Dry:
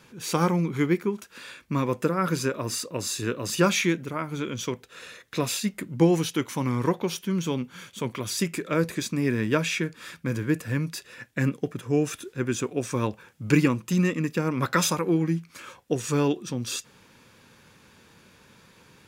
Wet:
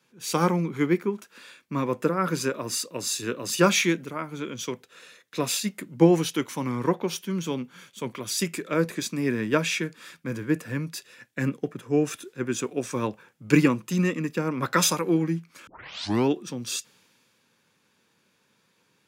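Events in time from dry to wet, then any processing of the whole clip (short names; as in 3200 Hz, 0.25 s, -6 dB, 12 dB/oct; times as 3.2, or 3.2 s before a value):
15.67 tape start 0.62 s
whole clip: HPF 150 Hz 12 dB/oct; three-band expander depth 40%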